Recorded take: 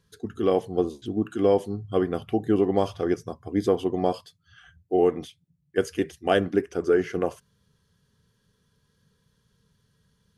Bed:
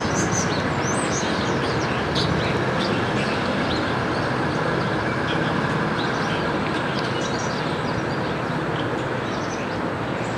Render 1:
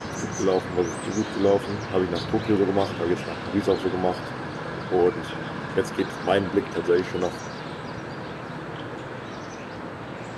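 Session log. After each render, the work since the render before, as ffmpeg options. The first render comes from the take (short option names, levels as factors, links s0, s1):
-filter_complex "[1:a]volume=0.316[s0];[0:a][s0]amix=inputs=2:normalize=0"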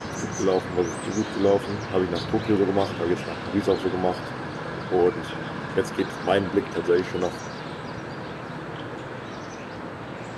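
-af anull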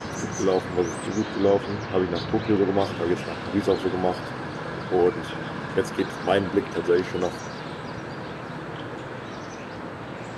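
-filter_complex "[0:a]asettb=1/sr,asplit=3[s0][s1][s2];[s0]atrim=end=1.074[s3];[s1]atrim=start=1.07:end=2.82,asetpts=PTS-STARTPTS,afade=t=in:d=0.004:c=qsin,afade=t=out:st=1.746:d=0.004:c=qsin,lowpass=5800[s4];[s2]atrim=start=2.816[s5];[s3][s4]acrossfade=d=0.004:c1=hsin:c2=qsin[s6];[s6][s5]acrossfade=d=0.004:c1=qsin:c2=hsin"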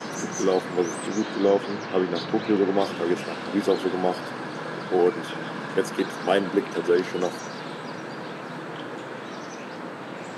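-af "highpass=f=160:w=0.5412,highpass=f=160:w=1.3066,highshelf=f=6900:g=4.5"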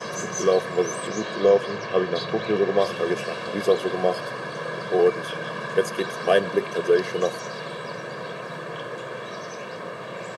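-af "aecho=1:1:1.8:0.74"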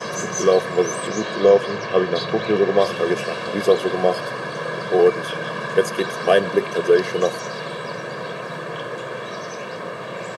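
-af "volume=1.58,alimiter=limit=0.708:level=0:latency=1"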